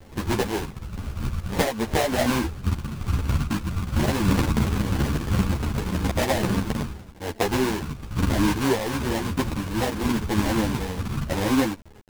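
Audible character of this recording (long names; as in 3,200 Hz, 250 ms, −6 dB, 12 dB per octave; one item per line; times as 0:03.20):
aliases and images of a low sample rate 1,300 Hz, jitter 20%
tremolo triangle 0.98 Hz, depth 40%
a quantiser's noise floor 8 bits, dither none
a shimmering, thickened sound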